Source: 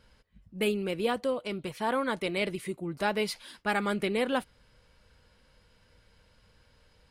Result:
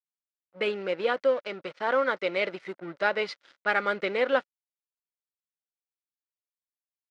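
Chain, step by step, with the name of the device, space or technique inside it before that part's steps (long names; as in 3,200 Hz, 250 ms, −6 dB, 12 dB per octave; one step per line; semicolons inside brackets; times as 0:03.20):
blown loudspeaker (dead-zone distortion −45 dBFS; loudspeaker in its box 220–5,400 Hz, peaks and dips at 220 Hz −6 dB, 550 Hz +9 dB, 1,400 Hz +9 dB, 2,000 Hz +6 dB)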